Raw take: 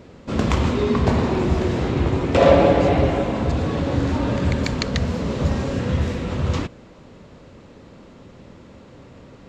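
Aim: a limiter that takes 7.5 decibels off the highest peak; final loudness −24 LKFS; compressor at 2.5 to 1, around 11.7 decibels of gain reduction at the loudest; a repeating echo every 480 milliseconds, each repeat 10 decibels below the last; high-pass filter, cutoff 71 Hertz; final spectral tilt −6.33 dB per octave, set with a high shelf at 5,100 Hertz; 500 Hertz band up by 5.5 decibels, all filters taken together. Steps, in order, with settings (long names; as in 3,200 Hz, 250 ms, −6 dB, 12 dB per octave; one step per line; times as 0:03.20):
high-pass filter 71 Hz
parametric band 500 Hz +6.5 dB
high-shelf EQ 5,100 Hz −7 dB
downward compressor 2.5 to 1, threshold −22 dBFS
brickwall limiter −16 dBFS
repeating echo 480 ms, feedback 32%, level −10 dB
level +1.5 dB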